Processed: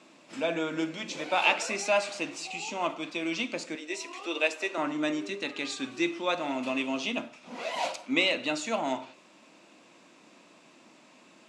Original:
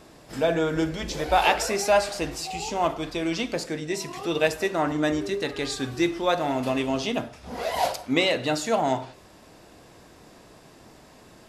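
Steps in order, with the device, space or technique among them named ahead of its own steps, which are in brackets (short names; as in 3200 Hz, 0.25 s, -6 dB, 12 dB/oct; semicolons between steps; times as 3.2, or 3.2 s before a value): television speaker (speaker cabinet 210–8000 Hz, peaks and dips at 430 Hz -10 dB, 750 Hz -6 dB, 1700 Hz -5 dB, 2500 Hz +7 dB, 5000 Hz -5 dB); 3.75–4.78 HPF 310 Hz 24 dB/oct; gain -3 dB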